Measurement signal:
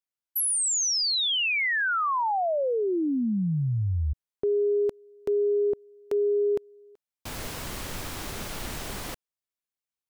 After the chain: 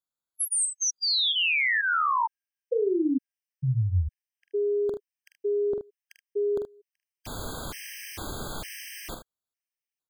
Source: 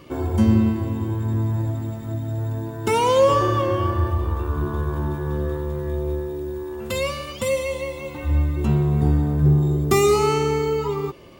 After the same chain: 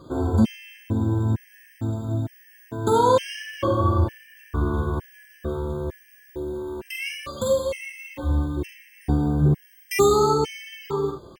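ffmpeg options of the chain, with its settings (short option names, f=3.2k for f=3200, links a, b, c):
-filter_complex "[0:a]asplit=2[a][b];[b]aecho=0:1:45|76:0.501|0.316[c];[a][c]amix=inputs=2:normalize=0,afftfilt=real='re*gt(sin(2*PI*1.1*pts/sr)*(1-2*mod(floor(b*sr/1024/1600),2)),0)':imag='im*gt(sin(2*PI*1.1*pts/sr)*(1-2*mod(floor(b*sr/1024/1600),2)),0)':win_size=1024:overlap=0.75"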